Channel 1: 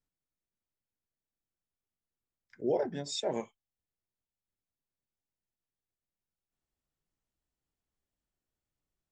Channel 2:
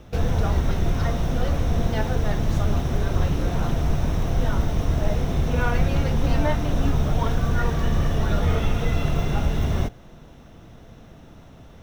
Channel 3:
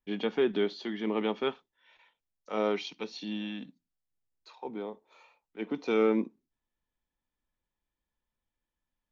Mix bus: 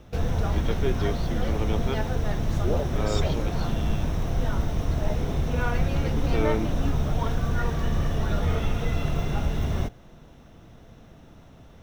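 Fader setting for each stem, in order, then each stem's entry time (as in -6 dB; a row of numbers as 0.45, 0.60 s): 0.0, -3.5, -2.0 dB; 0.00, 0.00, 0.45 s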